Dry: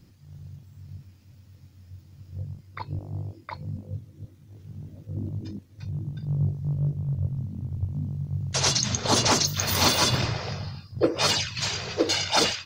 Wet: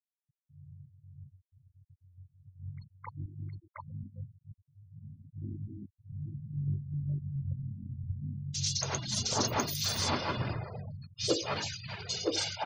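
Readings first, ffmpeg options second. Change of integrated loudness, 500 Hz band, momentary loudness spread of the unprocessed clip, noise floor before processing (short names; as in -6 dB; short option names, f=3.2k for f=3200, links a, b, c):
-9.0 dB, -8.5 dB, 20 LU, -53 dBFS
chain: -filter_complex "[0:a]afftfilt=real='re*gte(hypot(re,im),0.0316)':imag='im*gte(hypot(re,im),0.0316)':win_size=1024:overlap=0.75,acrossover=split=2900[a][b];[a]adelay=270[c];[c][b]amix=inputs=2:normalize=0,volume=-8dB"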